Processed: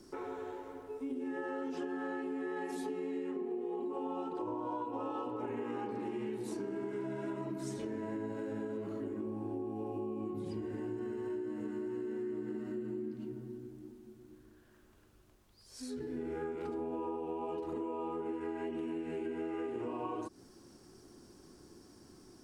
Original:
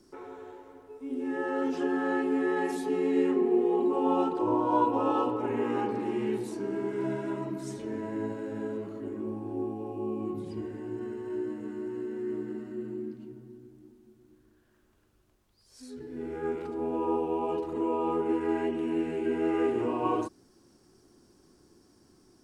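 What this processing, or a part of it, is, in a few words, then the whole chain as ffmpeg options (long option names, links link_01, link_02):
serial compression, peaks first: -af "acompressor=threshold=-35dB:ratio=6,acompressor=threshold=-42dB:ratio=2,volume=3.5dB"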